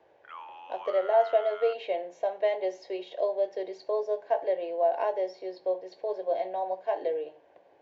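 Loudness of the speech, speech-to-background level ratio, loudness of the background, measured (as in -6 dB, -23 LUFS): -30.0 LUFS, 14.0 dB, -44.0 LUFS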